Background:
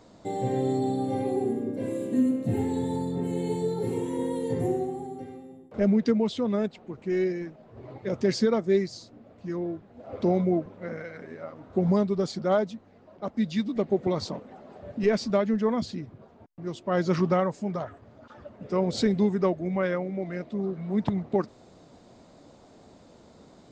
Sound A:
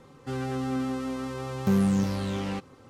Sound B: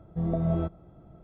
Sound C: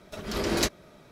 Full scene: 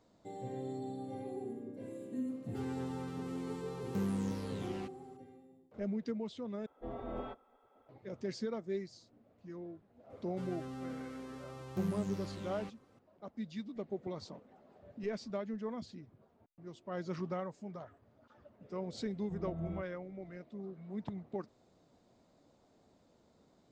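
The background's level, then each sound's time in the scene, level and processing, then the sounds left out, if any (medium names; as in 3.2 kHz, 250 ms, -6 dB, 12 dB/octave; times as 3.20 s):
background -15 dB
2.28 s: add A -12.5 dB
6.66 s: replace with B -2 dB + spectral gate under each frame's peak -15 dB weak
10.10 s: add A -14 dB
19.14 s: add B -14.5 dB
not used: C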